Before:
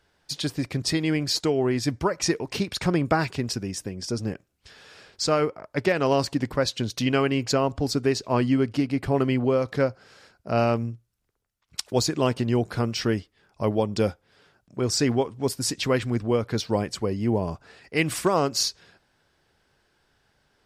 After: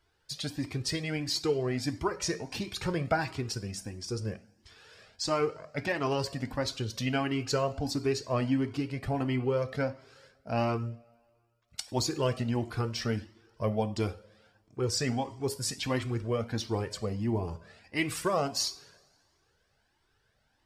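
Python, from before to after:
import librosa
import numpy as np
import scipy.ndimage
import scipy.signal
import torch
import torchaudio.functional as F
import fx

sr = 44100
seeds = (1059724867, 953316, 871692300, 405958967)

y = fx.rev_double_slope(x, sr, seeds[0], early_s=0.46, late_s=2.0, knee_db=-20, drr_db=10.0)
y = fx.comb_cascade(y, sr, direction='rising', hz=1.5)
y = F.gain(torch.from_numpy(y), -2.0).numpy()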